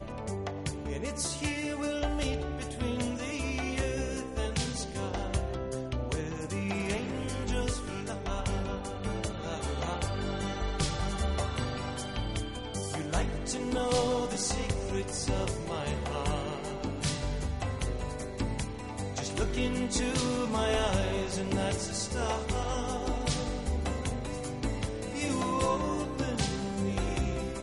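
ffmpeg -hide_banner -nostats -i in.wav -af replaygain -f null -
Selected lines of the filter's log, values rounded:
track_gain = +14.7 dB
track_peak = 0.118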